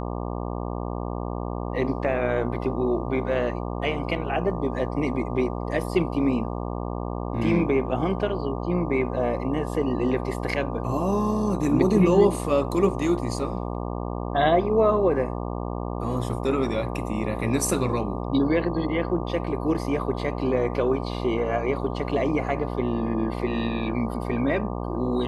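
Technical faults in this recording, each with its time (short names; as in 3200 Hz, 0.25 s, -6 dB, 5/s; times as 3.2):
buzz 60 Hz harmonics 20 -30 dBFS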